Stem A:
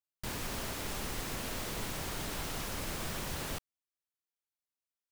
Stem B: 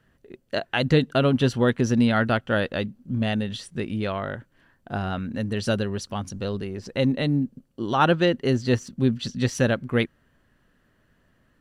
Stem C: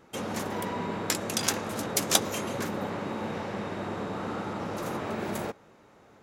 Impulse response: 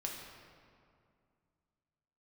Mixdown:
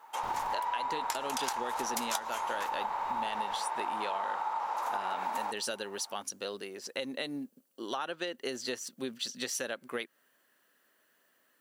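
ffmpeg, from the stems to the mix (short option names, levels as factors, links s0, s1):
-filter_complex "[0:a]bass=f=250:g=-4,treble=f=4000:g=-12,volume=0.531[s0];[1:a]highpass=350,aemphasis=mode=production:type=bsi,acompressor=threshold=0.0501:ratio=6,volume=0.631,asplit=2[s1][s2];[2:a]highpass=f=900:t=q:w=8.4,volume=0.631[s3];[s2]apad=whole_len=225784[s4];[s0][s4]sidechaincompress=threshold=0.01:ratio=8:attack=16:release=1000[s5];[s5][s1][s3]amix=inputs=3:normalize=0,acompressor=threshold=0.0316:ratio=6"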